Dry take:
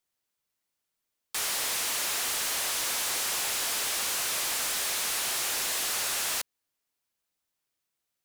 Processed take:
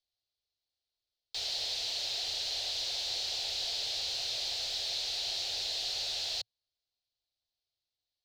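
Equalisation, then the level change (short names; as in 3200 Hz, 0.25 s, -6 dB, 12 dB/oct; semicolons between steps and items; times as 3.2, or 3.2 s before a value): EQ curve 110 Hz 0 dB, 180 Hz -21 dB, 430 Hz -9 dB, 730 Hz -5 dB, 1100 Hz -23 dB, 2200 Hz -13 dB, 4200 Hz +5 dB, 9900 Hz -27 dB; 0.0 dB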